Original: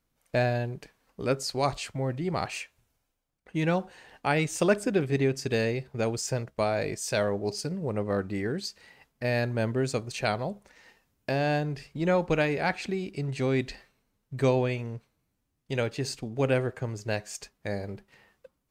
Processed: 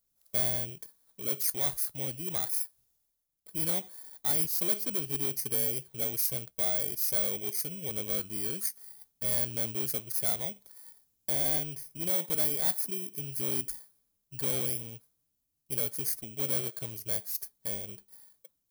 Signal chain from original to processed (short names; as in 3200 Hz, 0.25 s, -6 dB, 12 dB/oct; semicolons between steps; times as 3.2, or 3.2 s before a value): FFT order left unsorted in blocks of 16 samples; hard clip -24 dBFS, distortion -11 dB; pre-emphasis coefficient 0.8; gain +3 dB